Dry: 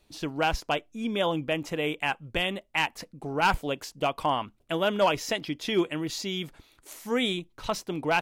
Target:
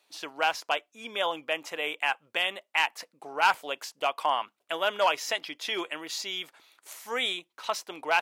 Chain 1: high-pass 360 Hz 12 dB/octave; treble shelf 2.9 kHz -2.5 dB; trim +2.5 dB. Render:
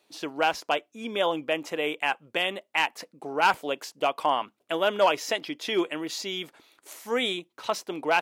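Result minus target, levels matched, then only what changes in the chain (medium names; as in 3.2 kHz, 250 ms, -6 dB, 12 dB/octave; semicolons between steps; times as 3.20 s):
500 Hz band +3.5 dB
change: high-pass 740 Hz 12 dB/octave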